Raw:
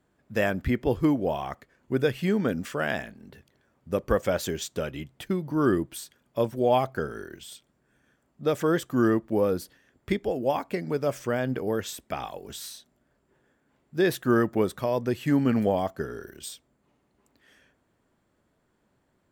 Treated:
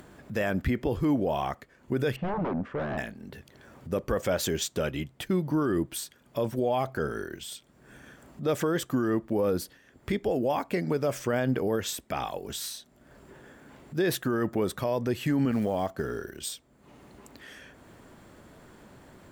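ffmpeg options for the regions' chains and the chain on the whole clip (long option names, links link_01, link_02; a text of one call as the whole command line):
ffmpeg -i in.wav -filter_complex "[0:a]asettb=1/sr,asplit=3[link_01][link_02][link_03];[link_01]atrim=end=2.164[link_04];[link_02]atrim=start=2.16:end=2.98,asetpts=PTS-STARTPTS,afade=type=in:duration=0.004:curve=qsin,afade=type=out:start_time=0.816:duration=0.004:curve=qsin,aeval=exprs='0.0447*(abs(mod(val(0)/0.0447+3,4)-2)-1)':channel_layout=same,lowpass=1100[link_05];[link_03]atrim=start=2.976[link_06];[link_04][link_05]acrossfade=duration=0.004:curve1=hsin:curve2=qsin[link_07];[link_07][link_06]acrossfade=duration=0.004:curve1=qsin:curve2=hsin,asettb=1/sr,asplit=3[link_08][link_09][link_10];[link_08]atrim=end=15.514[link_11];[link_09]atrim=start=15.51:end=16.45,asetpts=PTS-STARTPTS,afade=type=in:duration=0.004:curve=qsin,afade=type=out:start_time=0.936:duration=0.004:curve=qsin,highshelf=frequency=11000:gain=-4.5,acompressor=threshold=-28dB:ratio=3:attack=3.2:release=140:knee=1:detection=peak,acrusher=bits=8:mode=log:mix=0:aa=0.000001[link_12];[link_10]atrim=start=16.446[link_13];[link_11][link_12]acrossfade=duration=0.004:curve1=hsin:curve2=qsin[link_14];[link_14][link_13]acrossfade=duration=0.004:curve1=qsin:curve2=hsin,acompressor=mode=upward:threshold=-41dB:ratio=2.5,alimiter=limit=-21.5dB:level=0:latency=1:release=38,volume=3.5dB" out.wav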